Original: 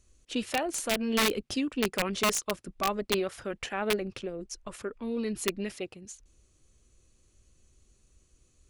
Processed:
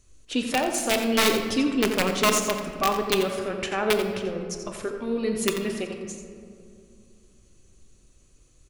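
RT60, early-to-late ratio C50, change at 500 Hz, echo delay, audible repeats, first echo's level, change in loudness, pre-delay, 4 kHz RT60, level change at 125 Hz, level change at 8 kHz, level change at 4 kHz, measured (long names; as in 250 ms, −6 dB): 2.4 s, 5.0 dB, +7.0 dB, 87 ms, 1, −9.5 dB, +6.0 dB, 7 ms, 1.2 s, +6.0 dB, +5.5 dB, +5.5 dB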